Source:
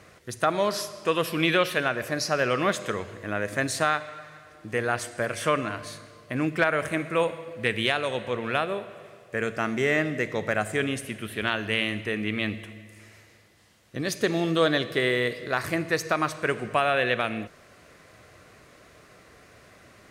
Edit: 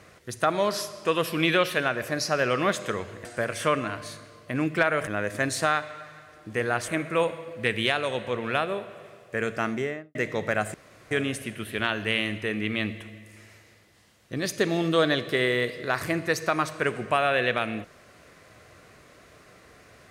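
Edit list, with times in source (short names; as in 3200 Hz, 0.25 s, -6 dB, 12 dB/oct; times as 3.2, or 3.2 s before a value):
3.25–5.06 move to 6.88
9.63–10.15 studio fade out
10.74 insert room tone 0.37 s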